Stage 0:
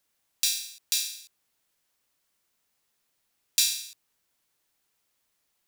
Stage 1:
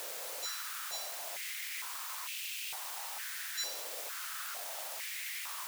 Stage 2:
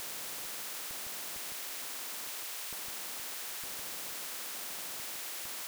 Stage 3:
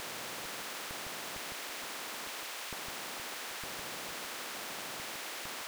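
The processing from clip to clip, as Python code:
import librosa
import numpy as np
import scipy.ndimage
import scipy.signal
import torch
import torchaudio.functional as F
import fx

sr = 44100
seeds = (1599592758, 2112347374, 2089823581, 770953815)

y1 = fx.spec_topn(x, sr, count=4)
y1 = fx.quant_dither(y1, sr, seeds[0], bits=6, dither='triangular')
y1 = fx.filter_held_highpass(y1, sr, hz=2.2, low_hz=530.0, high_hz=2600.0)
y1 = F.gain(torch.from_numpy(y1), -6.5).numpy()
y2 = fx.high_shelf(y1, sr, hz=4800.0, db=-9.0)
y2 = fx.echo_alternate(y2, sr, ms=157, hz=1800.0, feedback_pct=61, wet_db=-6)
y2 = fx.spectral_comp(y2, sr, ratio=10.0)
y3 = fx.lowpass(y2, sr, hz=2700.0, slope=6)
y3 = F.gain(torch.from_numpy(y3), 6.0).numpy()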